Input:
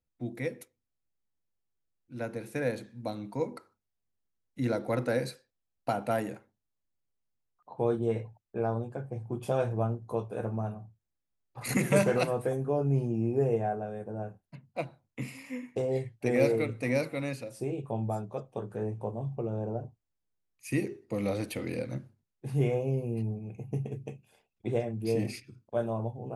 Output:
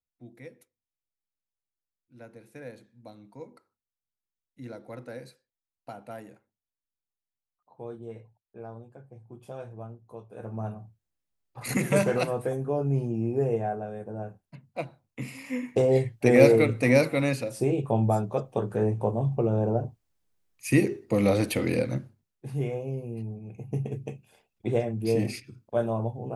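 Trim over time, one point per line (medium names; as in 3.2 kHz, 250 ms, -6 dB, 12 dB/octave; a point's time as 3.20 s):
10.24 s -11.5 dB
10.66 s +1 dB
15.21 s +1 dB
15.67 s +8.5 dB
21.78 s +8.5 dB
22.65 s -3 dB
23.30 s -3 dB
23.86 s +4 dB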